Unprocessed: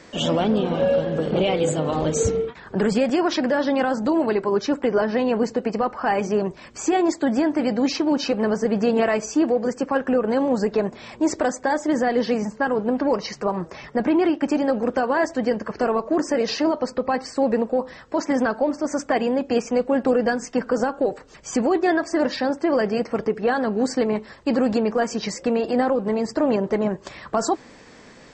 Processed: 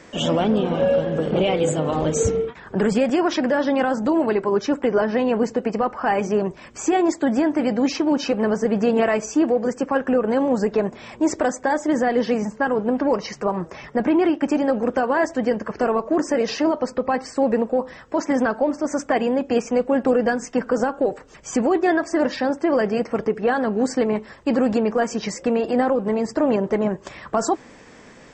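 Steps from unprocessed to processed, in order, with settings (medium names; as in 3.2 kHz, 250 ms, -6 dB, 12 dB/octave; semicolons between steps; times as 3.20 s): peaking EQ 4.3 kHz -6.5 dB 0.38 oct; trim +1 dB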